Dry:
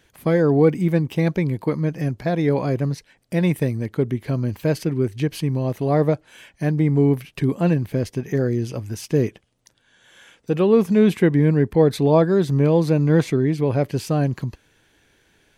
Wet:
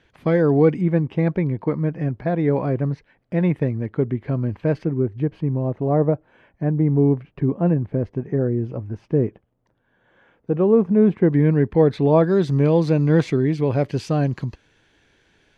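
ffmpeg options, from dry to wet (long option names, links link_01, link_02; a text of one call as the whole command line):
ffmpeg -i in.wav -af "asetnsamples=nb_out_samples=441:pad=0,asendcmd='0.81 lowpass f 1900;4.86 lowpass f 1100;11.33 lowpass f 2700;12.24 lowpass f 5600',lowpass=3500" out.wav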